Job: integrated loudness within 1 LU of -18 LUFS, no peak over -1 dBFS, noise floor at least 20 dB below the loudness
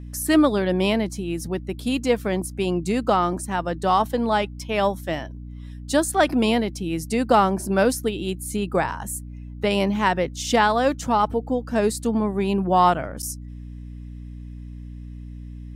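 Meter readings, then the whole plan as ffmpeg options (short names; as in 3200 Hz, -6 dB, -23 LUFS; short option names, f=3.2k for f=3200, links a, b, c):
hum 60 Hz; harmonics up to 300 Hz; hum level -34 dBFS; loudness -22.5 LUFS; peak -4.0 dBFS; loudness target -18.0 LUFS
-> -af "bandreject=f=60:t=h:w=6,bandreject=f=120:t=h:w=6,bandreject=f=180:t=h:w=6,bandreject=f=240:t=h:w=6,bandreject=f=300:t=h:w=6"
-af "volume=4.5dB,alimiter=limit=-1dB:level=0:latency=1"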